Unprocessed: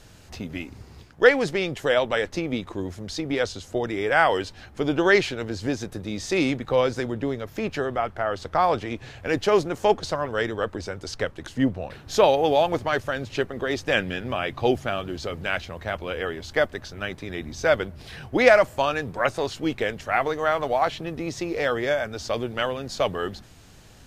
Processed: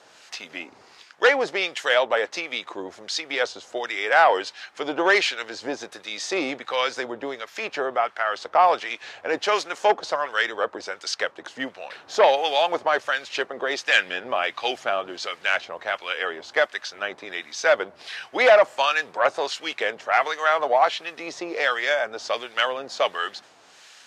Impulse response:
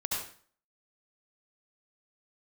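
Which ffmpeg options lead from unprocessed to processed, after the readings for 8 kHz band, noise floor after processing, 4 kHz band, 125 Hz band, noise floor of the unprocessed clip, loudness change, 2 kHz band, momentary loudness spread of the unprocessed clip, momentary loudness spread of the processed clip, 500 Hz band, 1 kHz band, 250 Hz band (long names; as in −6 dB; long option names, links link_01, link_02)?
+2.5 dB, −53 dBFS, +5.0 dB, below −20 dB, −48 dBFS, +1.0 dB, +3.5 dB, 13 LU, 14 LU, −0.5 dB, +3.5 dB, −9.0 dB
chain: -filter_complex "[0:a]acrossover=split=1500[link_01][link_02];[link_02]asoftclip=type=hard:threshold=-18dB[link_03];[link_01][link_03]amix=inputs=2:normalize=0,acrossover=split=1200[link_04][link_05];[link_04]aeval=exprs='val(0)*(1-0.7/2+0.7/2*cos(2*PI*1.4*n/s))':channel_layout=same[link_06];[link_05]aeval=exprs='val(0)*(1-0.7/2-0.7/2*cos(2*PI*1.4*n/s))':channel_layout=same[link_07];[link_06][link_07]amix=inputs=2:normalize=0,aeval=exprs='0.531*sin(PI/2*1.78*val(0)/0.531)':channel_layout=same,highpass=680,lowpass=7000"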